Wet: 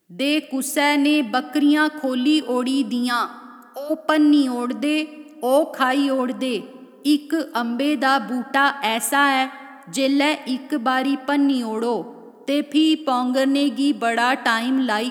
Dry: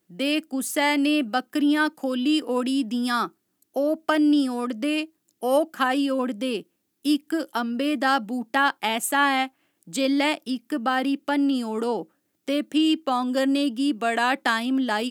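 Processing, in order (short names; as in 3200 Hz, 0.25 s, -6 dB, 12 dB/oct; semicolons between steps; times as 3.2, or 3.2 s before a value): 3.09–3.89 HPF 420 Hz -> 1100 Hz 12 dB/oct; plate-style reverb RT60 2.3 s, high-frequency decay 0.45×, DRR 15 dB; gain +3.5 dB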